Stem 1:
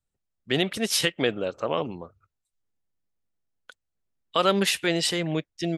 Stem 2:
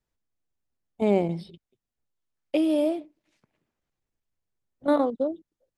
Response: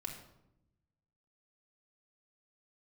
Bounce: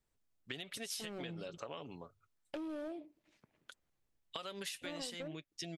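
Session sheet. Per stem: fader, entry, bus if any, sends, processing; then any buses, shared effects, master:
-11.5 dB, 0.00 s, no send, comb 7.1 ms, depth 33%; compressor 3:1, threshold -26 dBFS, peak gain reduction 8 dB; high shelf 2100 Hz +10.5 dB
-0.5 dB, 0.00 s, no send, high shelf 8200 Hz -9 dB; compressor 2:1, threshold -38 dBFS, peak gain reduction 11.5 dB; hard clip -31.5 dBFS, distortion -11 dB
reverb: off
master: compressor, threshold -41 dBFS, peak gain reduction 13.5 dB

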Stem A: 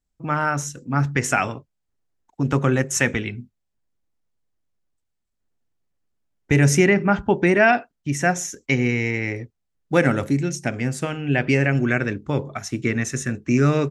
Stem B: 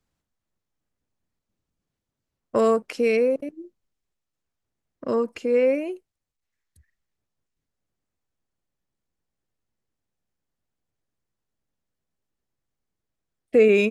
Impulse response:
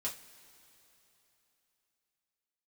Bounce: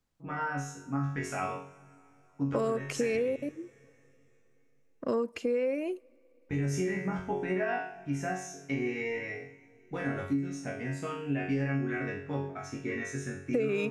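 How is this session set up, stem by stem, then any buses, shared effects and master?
+2.5 dB, 0.00 s, send -4 dB, high shelf 3100 Hz -9.5 dB; limiter -11.5 dBFS, peak gain reduction 7 dB; resonator bank F#2 fifth, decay 0.52 s
-2.5 dB, 0.00 s, send -22 dB, dry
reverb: on, pre-delay 3 ms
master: compressor 10:1, threshold -26 dBFS, peak gain reduction 13 dB

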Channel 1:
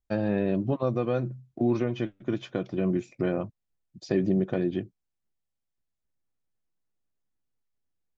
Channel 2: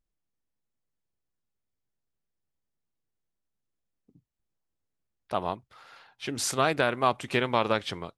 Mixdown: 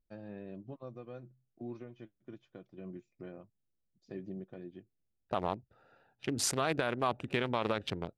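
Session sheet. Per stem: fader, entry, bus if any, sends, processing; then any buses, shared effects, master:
-17.5 dB, 0.00 s, no send, upward expander 1.5:1, over -41 dBFS
+0.5 dB, 0.00 s, no send, Wiener smoothing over 41 samples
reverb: off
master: limiter -18.5 dBFS, peak gain reduction 10 dB

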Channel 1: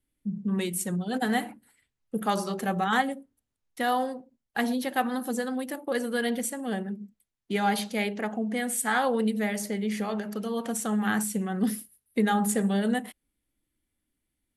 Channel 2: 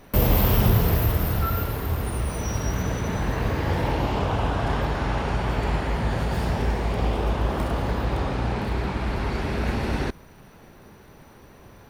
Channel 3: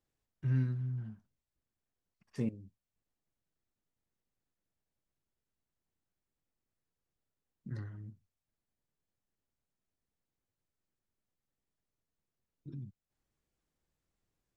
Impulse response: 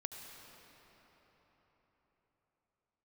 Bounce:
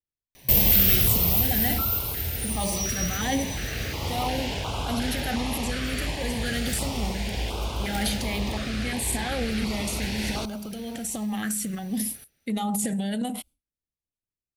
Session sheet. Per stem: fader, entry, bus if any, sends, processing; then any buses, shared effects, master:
+1.0 dB, 0.30 s, no send, no echo send, expander -49 dBFS; fifteen-band EQ 160 Hz -6 dB, 400 Hz -11 dB, 1000 Hz -4 dB; transient shaper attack -2 dB, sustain +10 dB
0.0 dB, 0.35 s, no send, echo send -20.5 dB, tilt shelf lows -9.5 dB, about 1400 Hz
-14.0 dB, 0.00 s, no send, no echo send, dry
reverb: off
echo: echo 0.801 s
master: bell 64 Hz +4 dB 1.3 oct; stepped notch 2.8 Hz 900–1800 Hz

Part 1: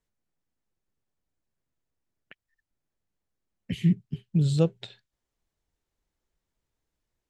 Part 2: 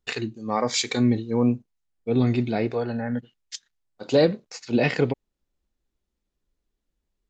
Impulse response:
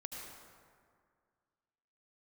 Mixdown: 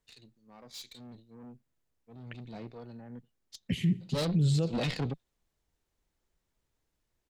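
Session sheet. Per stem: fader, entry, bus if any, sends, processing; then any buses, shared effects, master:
+2.0 dB, 0.00 s, no send, echo send -21 dB, limiter -17 dBFS, peak gain reduction 7 dB
2.18 s -24 dB -> 2.56 s -15 dB -> 3.98 s -15 dB -> 4.22 s -6 dB, 0.00 s, no send, no echo send, fifteen-band EQ 160 Hz +9 dB, 400 Hz -3 dB, 1600 Hz -5 dB, 4000 Hz +9 dB; tube stage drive 22 dB, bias 0.6; three-band expander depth 70%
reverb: off
echo: feedback echo 73 ms, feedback 42%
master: limiter -20 dBFS, peak gain reduction 5.5 dB

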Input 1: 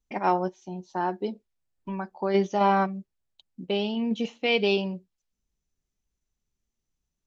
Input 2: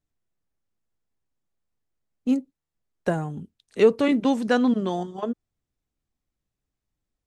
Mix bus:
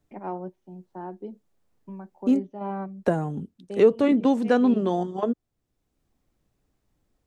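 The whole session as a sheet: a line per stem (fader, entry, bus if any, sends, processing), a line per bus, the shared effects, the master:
-17.5 dB, 0.00 s, no send, LPF 2600 Hz 12 dB/oct; three-band expander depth 40%
+2.5 dB, 0.00 s, no send, low shelf 310 Hz -11 dB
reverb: off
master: tilt shelf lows +7.5 dB, about 810 Hz; three-band squash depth 40%

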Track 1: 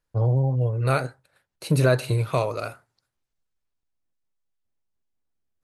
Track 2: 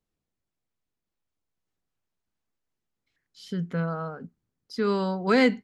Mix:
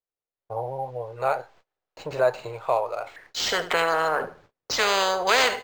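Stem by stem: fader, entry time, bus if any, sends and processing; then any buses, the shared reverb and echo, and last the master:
-6.0 dB, 0.35 s, no send, no echo send, bell 840 Hz +12.5 dB 0.67 oct
-3.0 dB, 0.00 s, no send, echo send -15 dB, high shelf 4200 Hz -9.5 dB; AGC gain up to 14 dB; spectral compressor 4:1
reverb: off
echo: feedback echo 76 ms, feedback 27%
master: resonant low shelf 340 Hz -13 dB, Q 1.5; gate -51 dBFS, range -30 dB; decimation joined by straight lines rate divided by 4×

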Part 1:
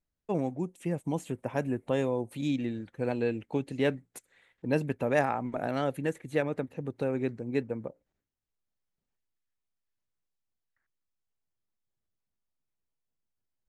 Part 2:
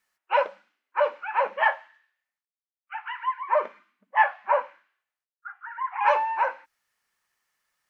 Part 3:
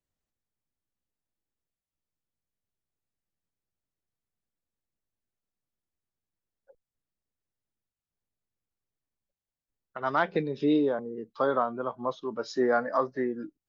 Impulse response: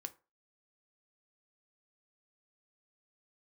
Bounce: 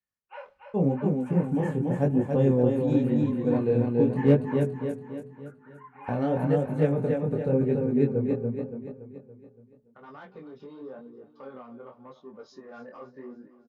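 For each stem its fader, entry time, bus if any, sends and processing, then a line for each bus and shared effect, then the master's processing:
+3.0 dB, 0.45 s, muted 4.81–6.08, no send, echo send -3.5 dB, tilt shelf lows +9.5 dB, about 900 Hz; de-hum 212.3 Hz, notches 9
-17.5 dB, 0.00 s, send -8 dB, echo send -5 dB, dry
-11.0 dB, 0.00 s, no send, echo send -15.5 dB, bell 230 Hz +6.5 dB 2.7 oct; limiter -17.5 dBFS, peak gain reduction 7.5 dB; soft clip -19 dBFS, distortion -20 dB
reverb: on, RT60 0.30 s, pre-delay 3 ms
echo: feedback echo 0.284 s, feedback 49%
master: overloaded stage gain 6.5 dB; notch comb 330 Hz; chorus 0.89 Hz, delay 19.5 ms, depth 6 ms

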